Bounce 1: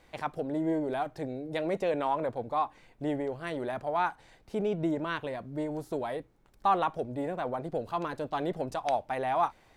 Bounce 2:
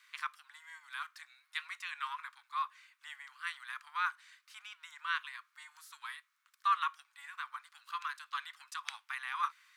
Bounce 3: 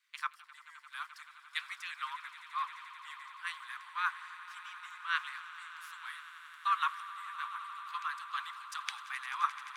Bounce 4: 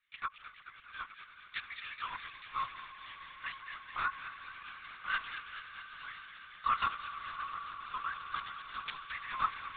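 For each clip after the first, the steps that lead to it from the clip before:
steep high-pass 1.1 kHz 72 dB/octave; trim +1.5 dB
echo with a slow build-up 87 ms, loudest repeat 8, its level -14 dB; harmonic-percussive split harmonic -6 dB; three bands expanded up and down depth 40%; trim +1 dB
dynamic bell 730 Hz, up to +5 dB, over -51 dBFS, Q 1.3; on a send: feedback echo behind a high-pass 215 ms, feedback 73%, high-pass 2 kHz, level -6 dB; on the sum: LPC vocoder at 8 kHz whisper; trim -2.5 dB

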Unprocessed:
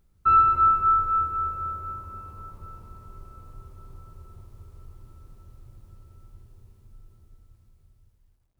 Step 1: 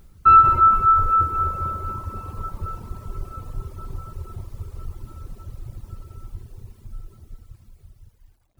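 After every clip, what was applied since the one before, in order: reverb removal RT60 1.8 s; in parallel at -1.5 dB: compressor with a negative ratio -30 dBFS, ratio -0.5; on the sum: trim +7 dB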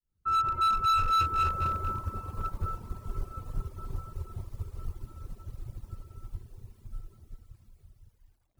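fade-in on the opening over 1.76 s; overload inside the chain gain 22 dB; upward expansion 1.5:1, over -39 dBFS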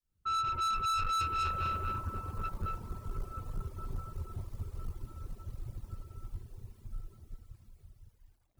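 saturation -29.5 dBFS, distortion -11 dB

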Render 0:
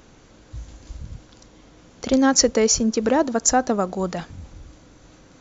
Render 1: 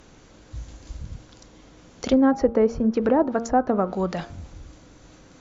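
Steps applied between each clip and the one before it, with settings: de-hum 115.7 Hz, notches 13; low-pass that closes with the level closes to 1.1 kHz, closed at -15.5 dBFS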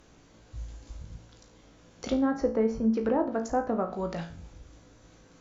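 feedback comb 56 Hz, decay 0.39 s, harmonics all, mix 80%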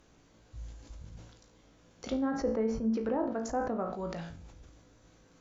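decay stretcher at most 61 dB/s; trim -5.5 dB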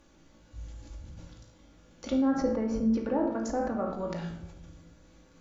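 simulated room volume 3100 m³, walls furnished, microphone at 2.4 m

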